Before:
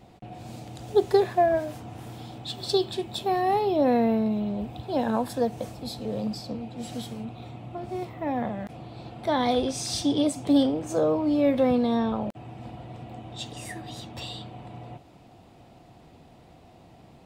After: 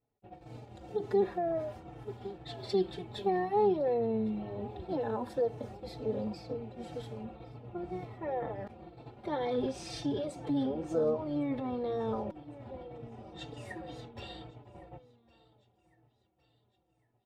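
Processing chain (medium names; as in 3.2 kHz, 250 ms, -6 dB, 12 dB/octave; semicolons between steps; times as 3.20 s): band-stop 930 Hz, Q 15; gate -40 dBFS, range -26 dB; low-pass 1.3 kHz 6 dB/octave; bass shelf 160 Hz -7 dB; feedback delay 1109 ms, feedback 49%, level -22 dB; peak limiter -22 dBFS, peak gain reduction 11 dB; comb 2.2 ms, depth 42%; harmony voices -12 st -11 dB; endless flanger 4.1 ms -2 Hz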